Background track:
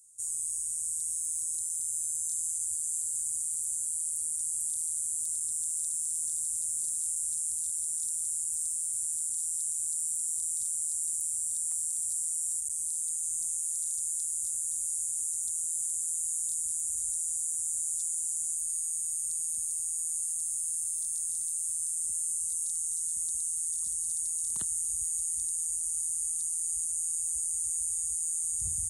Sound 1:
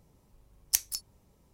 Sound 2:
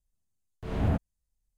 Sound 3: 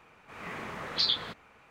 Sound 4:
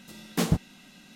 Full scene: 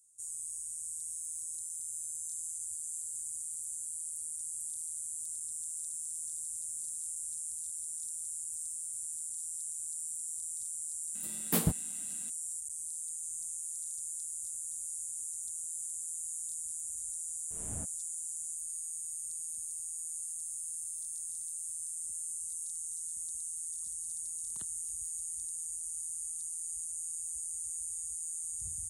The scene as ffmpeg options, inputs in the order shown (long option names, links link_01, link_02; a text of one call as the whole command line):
ffmpeg -i bed.wav -i cue0.wav -i cue1.wav -i cue2.wav -i cue3.wav -filter_complex "[0:a]volume=-7.5dB[link_01];[4:a]aexciter=amount=5.7:drive=4.5:freq=8300[link_02];[1:a]acompressor=threshold=-51dB:ratio=6:attack=3.2:release=140:knee=1:detection=peak[link_03];[link_02]atrim=end=1.15,asetpts=PTS-STARTPTS,volume=-6dB,afade=type=in:duration=0.004:curve=hsin,afade=type=out:start_time=1.146:duration=0.004:curve=hsin,adelay=11150[link_04];[2:a]atrim=end=1.57,asetpts=PTS-STARTPTS,volume=-17.5dB,afade=type=in:duration=0.004:curve=hsin,afade=type=out:start_time=1.566:duration=0.004:curve=hsin,adelay=16880[link_05];[link_03]atrim=end=1.53,asetpts=PTS-STARTPTS,volume=-15.5dB,afade=type=in:duration=0.004:curve=hsin,afade=type=out:start_time=1.526:duration=0.004:curve=hsin,adelay=24140[link_06];[link_01][link_04][link_05][link_06]amix=inputs=4:normalize=0" out.wav